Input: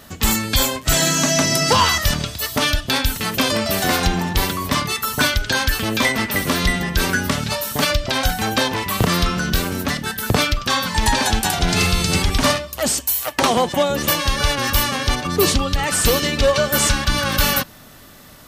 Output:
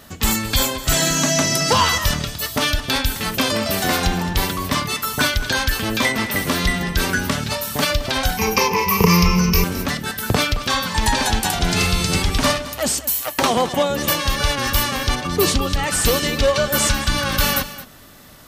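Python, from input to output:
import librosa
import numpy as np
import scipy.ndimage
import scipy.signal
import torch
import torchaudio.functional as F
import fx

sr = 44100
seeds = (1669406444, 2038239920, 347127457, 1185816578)

y = fx.ripple_eq(x, sr, per_octave=0.81, db=18, at=(8.37, 9.64))
y = y + 10.0 ** (-15.0 / 20.0) * np.pad(y, (int(217 * sr / 1000.0), 0))[:len(y)]
y = y * 10.0 ** (-1.0 / 20.0)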